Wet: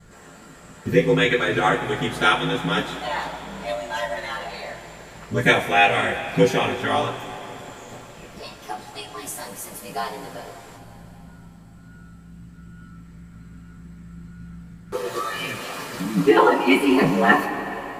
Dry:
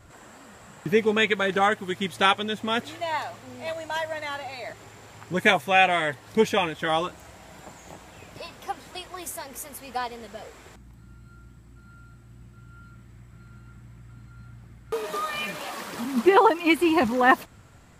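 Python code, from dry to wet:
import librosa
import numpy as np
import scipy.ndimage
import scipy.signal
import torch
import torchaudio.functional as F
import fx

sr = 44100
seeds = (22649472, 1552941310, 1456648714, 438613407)

y = x * np.sin(2.0 * np.pi * 54.0 * np.arange(len(x)) / sr)
y = fx.rev_double_slope(y, sr, seeds[0], early_s=0.2, late_s=3.9, knee_db=-22, drr_db=-9.0)
y = y * librosa.db_to_amplitude(-4.0)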